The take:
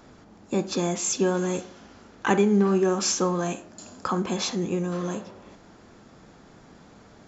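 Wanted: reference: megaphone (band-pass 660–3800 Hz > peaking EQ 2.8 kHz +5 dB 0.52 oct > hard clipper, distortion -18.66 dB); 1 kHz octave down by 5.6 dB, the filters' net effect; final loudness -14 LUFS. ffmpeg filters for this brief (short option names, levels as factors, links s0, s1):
-af "highpass=660,lowpass=3800,equalizer=f=1000:t=o:g=-6,equalizer=f=2800:t=o:w=0.52:g=5,asoftclip=type=hard:threshold=0.0841,volume=10.6"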